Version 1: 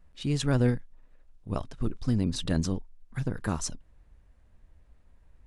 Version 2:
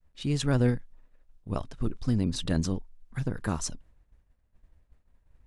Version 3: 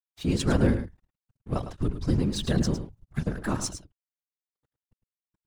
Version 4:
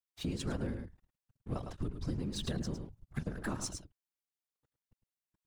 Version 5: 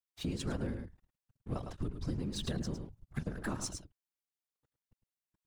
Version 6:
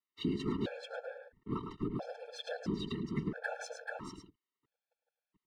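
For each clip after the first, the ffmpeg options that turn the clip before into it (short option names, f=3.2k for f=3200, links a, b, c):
-af "agate=range=-33dB:threshold=-49dB:ratio=3:detection=peak"
-af "aeval=exprs='sgn(val(0))*max(abs(val(0))-0.00376,0)':c=same,afftfilt=real='hypot(re,im)*cos(2*PI*random(0))':imag='hypot(re,im)*sin(2*PI*random(1))':win_size=512:overlap=0.75,aecho=1:1:106:0.299,volume=8.5dB"
-af "acompressor=threshold=-31dB:ratio=6,volume=-2.5dB"
-af anull
-filter_complex "[0:a]acrossover=split=170 4000:gain=0.141 1 0.0891[a][b][c];[a][b][c]amix=inputs=3:normalize=0,aecho=1:1:435:0.668,afftfilt=real='re*gt(sin(2*PI*0.75*pts/sr)*(1-2*mod(floor(b*sr/1024/450),2)),0)':imag='im*gt(sin(2*PI*0.75*pts/sr)*(1-2*mod(floor(b*sr/1024/450),2)),0)':win_size=1024:overlap=0.75,volume=6dB"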